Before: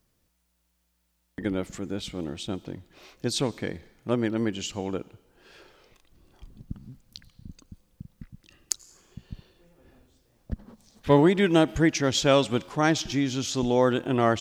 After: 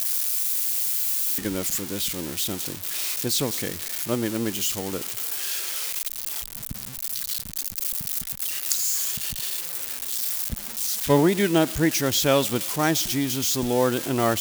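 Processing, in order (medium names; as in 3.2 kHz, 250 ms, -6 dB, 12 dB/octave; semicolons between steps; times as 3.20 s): zero-crossing glitches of -18.5 dBFS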